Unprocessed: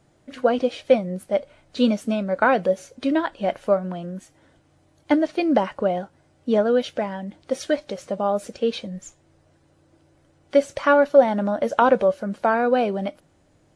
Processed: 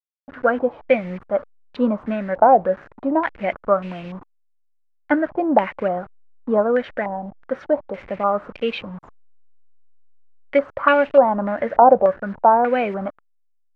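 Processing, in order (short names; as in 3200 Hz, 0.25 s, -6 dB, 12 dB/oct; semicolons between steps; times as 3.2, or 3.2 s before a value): level-crossing sampler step -36.5 dBFS; stepped low-pass 3.4 Hz 770–2600 Hz; gain -1 dB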